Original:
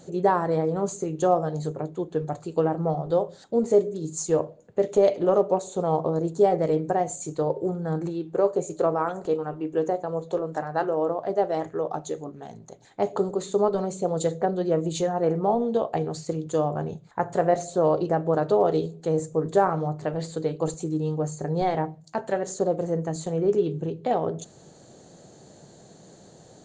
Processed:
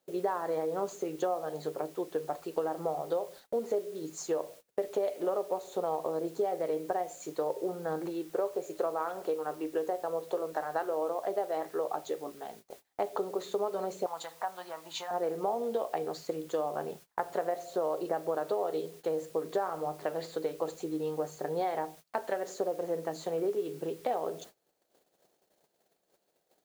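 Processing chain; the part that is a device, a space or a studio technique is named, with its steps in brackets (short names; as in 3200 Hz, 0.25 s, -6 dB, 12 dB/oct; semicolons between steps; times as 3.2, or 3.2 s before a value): baby monitor (BPF 410–4100 Hz; compressor 6:1, threshold -28 dBFS, peak gain reduction 12 dB; white noise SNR 24 dB; gate -49 dBFS, range -26 dB); 14.06–15.11 resonant low shelf 640 Hz -12.5 dB, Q 3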